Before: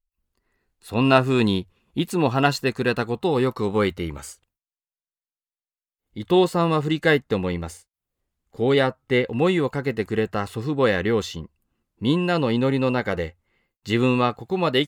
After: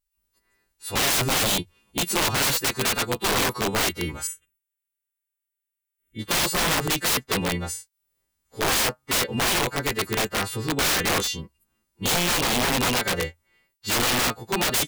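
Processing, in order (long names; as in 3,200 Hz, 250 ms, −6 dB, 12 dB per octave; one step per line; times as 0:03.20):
every partial snapped to a pitch grid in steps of 2 semitones
wrap-around overflow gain 17 dB
0:04.27–0:06.19: phaser with its sweep stopped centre 2,000 Hz, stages 4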